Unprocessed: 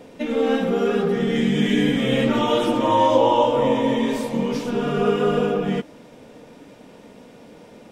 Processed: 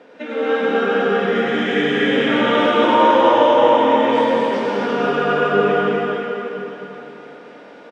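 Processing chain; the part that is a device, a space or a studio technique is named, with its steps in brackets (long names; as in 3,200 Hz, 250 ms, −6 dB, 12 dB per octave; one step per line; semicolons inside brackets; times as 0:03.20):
station announcement (band-pass filter 310–4,000 Hz; parametric band 1,500 Hz +9 dB 0.5 octaves; loudspeakers that aren't time-aligned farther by 33 metres −12 dB, 84 metres −4 dB; convolution reverb RT60 3.6 s, pre-delay 82 ms, DRR −3.5 dB)
level −1.5 dB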